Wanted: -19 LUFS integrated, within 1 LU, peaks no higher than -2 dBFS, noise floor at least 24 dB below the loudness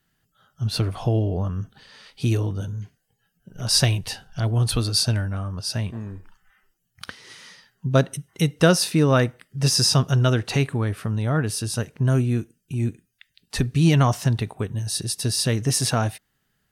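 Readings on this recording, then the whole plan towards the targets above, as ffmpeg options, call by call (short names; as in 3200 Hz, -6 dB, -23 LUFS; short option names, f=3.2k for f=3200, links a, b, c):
loudness -22.5 LUFS; peak -4.0 dBFS; loudness target -19.0 LUFS
-> -af "volume=3.5dB,alimiter=limit=-2dB:level=0:latency=1"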